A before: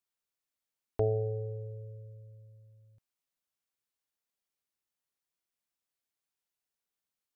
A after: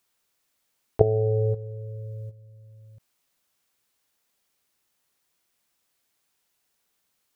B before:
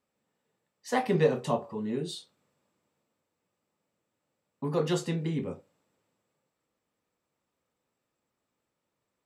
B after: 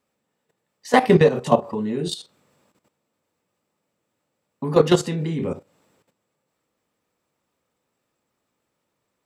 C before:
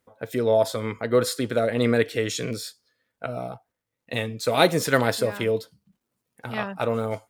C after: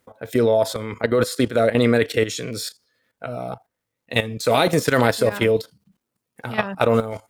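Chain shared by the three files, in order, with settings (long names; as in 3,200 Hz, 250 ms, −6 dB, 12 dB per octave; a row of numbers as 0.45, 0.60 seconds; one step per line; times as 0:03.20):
low-shelf EQ 64 Hz −2.5 dB
output level in coarse steps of 13 dB
normalise the peak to −2 dBFS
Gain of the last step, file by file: +16.5, +14.5, +10.0 decibels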